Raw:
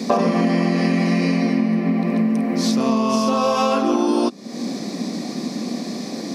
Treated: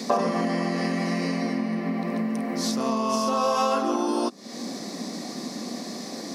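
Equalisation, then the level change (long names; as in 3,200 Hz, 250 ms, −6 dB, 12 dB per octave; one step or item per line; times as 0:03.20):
low-shelf EQ 500 Hz −10.5 dB
notch filter 2,400 Hz, Q 13
dynamic equaliser 3,200 Hz, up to −6 dB, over −42 dBFS, Q 0.82
0.0 dB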